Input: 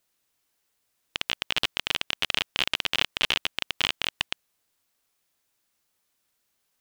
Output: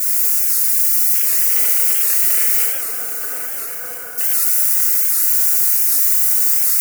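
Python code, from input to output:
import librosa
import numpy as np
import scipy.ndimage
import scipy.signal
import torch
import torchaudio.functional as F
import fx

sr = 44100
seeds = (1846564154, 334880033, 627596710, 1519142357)

p1 = x + 0.5 * 10.0 ** (-14.0 / 20.0) * np.diff(np.sign(x), prepend=np.sign(x[:1]))
p2 = scipy.signal.sosfilt(scipy.signal.butter(2, 180.0, 'highpass', fs=sr, output='sos'), p1)
p3 = p2 + 0.57 * np.pad(p2, (int(4.1 * sr / 1000.0), 0))[:len(p2)]
p4 = fx.leveller(p3, sr, passes=1)
p5 = fx.fixed_phaser(p4, sr, hz=920.0, stages=6)
p6 = fx.quant_dither(p5, sr, seeds[0], bits=8, dither='triangular')
p7 = fx.brickwall_lowpass(p6, sr, high_hz=1700.0, at=(2.65, 4.18))
p8 = p7 + fx.echo_swing(p7, sr, ms=1317, ratio=3, feedback_pct=40, wet_db=-11, dry=0)
p9 = fx.rev_fdn(p8, sr, rt60_s=2.3, lf_ratio=0.9, hf_ratio=0.6, size_ms=20.0, drr_db=-5.5)
p10 = fx.record_warp(p9, sr, rpm=78.0, depth_cents=160.0)
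y = F.gain(torch.from_numpy(p10), -7.0).numpy()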